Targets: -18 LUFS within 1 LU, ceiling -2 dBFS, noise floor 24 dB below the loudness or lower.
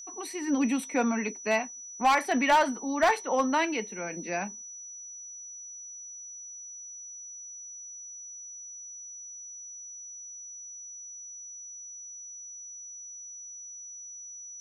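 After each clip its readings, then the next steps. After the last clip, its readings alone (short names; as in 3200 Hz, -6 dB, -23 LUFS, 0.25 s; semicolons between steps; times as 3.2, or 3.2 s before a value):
clipped 0.3%; flat tops at -16.5 dBFS; steady tone 5900 Hz; tone level -41 dBFS; loudness -32.0 LUFS; peak -16.5 dBFS; loudness target -18.0 LUFS
-> clip repair -16.5 dBFS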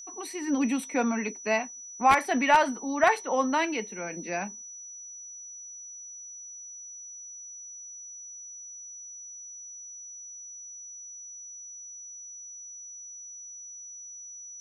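clipped 0.0%; steady tone 5900 Hz; tone level -41 dBFS
-> notch 5900 Hz, Q 30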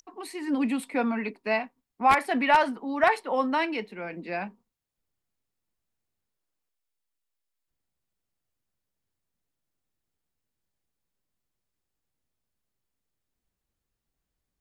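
steady tone none; loudness -26.5 LUFS; peak -7.5 dBFS; loudness target -18.0 LUFS
-> gain +8.5 dB; limiter -2 dBFS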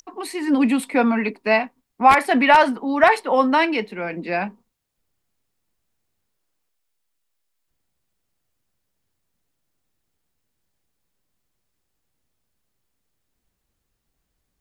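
loudness -18.5 LUFS; peak -2.0 dBFS; noise floor -76 dBFS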